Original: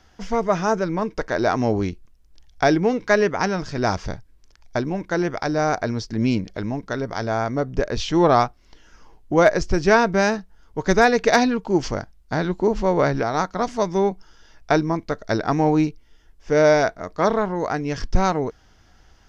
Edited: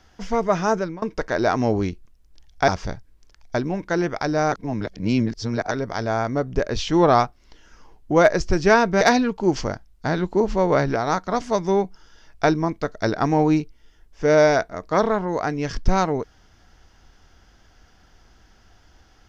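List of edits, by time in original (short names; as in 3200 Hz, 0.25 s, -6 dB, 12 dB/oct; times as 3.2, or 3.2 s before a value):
0.77–1.02 fade out, to -22 dB
2.68–3.89 cut
5.73–6.92 reverse
10.22–11.28 cut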